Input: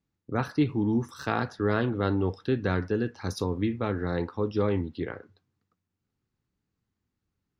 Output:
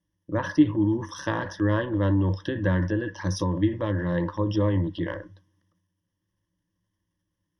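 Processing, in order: transient shaper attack +3 dB, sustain +8 dB; treble ducked by the level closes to 2800 Hz, closed at -20.5 dBFS; ripple EQ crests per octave 1.2, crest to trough 17 dB; gain -2.5 dB

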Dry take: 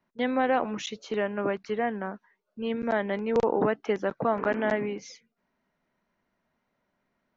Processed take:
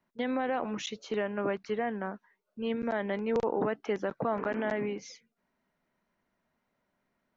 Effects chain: limiter -18.5 dBFS, peak gain reduction 5.5 dB; gain -2 dB

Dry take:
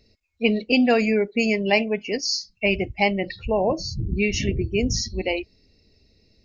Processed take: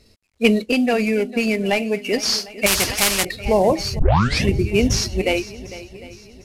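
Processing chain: CVSD 64 kbps; 0.58–2.05 compressor 2:1, threshold -25 dBFS, peak gain reduction 6 dB; swung echo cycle 0.752 s, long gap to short 1.5:1, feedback 35%, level -16.5 dB; 2.66–3.25 spectral compressor 4:1; 3.99 tape start 0.45 s; gain +5.5 dB

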